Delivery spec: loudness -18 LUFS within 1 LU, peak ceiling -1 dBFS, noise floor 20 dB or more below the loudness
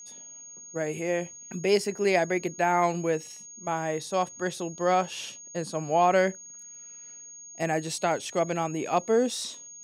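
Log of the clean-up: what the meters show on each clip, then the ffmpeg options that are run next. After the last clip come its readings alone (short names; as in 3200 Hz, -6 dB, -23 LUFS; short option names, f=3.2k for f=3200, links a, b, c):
steady tone 6600 Hz; tone level -43 dBFS; loudness -27.5 LUFS; peak -9.0 dBFS; loudness target -18.0 LUFS
-> -af "bandreject=f=6.6k:w=30"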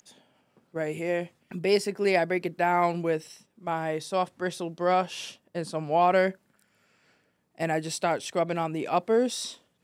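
steady tone none; loudness -27.5 LUFS; peak -9.0 dBFS; loudness target -18.0 LUFS
-> -af "volume=9.5dB,alimiter=limit=-1dB:level=0:latency=1"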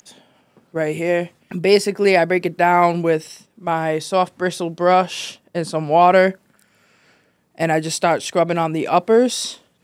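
loudness -18.0 LUFS; peak -1.0 dBFS; noise floor -62 dBFS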